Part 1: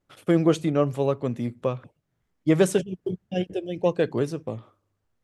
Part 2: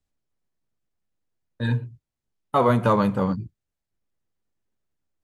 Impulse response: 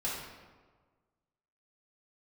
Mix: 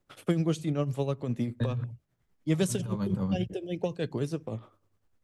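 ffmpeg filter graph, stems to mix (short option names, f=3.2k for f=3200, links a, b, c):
-filter_complex "[0:a]volume=1.5dB,asplit=2[a][b];[1:a]lowshelf=f=360:g=7.5,alimiter=limit=-14.5dB:level=0:latency=1:release=16,acrossover=split=200|3000[c][d][e];[d]acompressor=threshold=-29dB:ratio=6[f];[c][f][e]amix=inputs=3:normalize=0,volume=-2.5dB[g];[b]apad=whole_len=230995[h];[g][h]sidechaincompress=threshold=-21dB:ratio=8:attack=21:release=390[i];[a][i]amix=inputs=2:normalize=0,acrossover=split=200|3000[j][k][l];[k]acompressor=threshold=-28dB:ratio=6[m];[j][m][l]amix=inputs=3:normalize=0,tremolo=f=9.9:d=0.56"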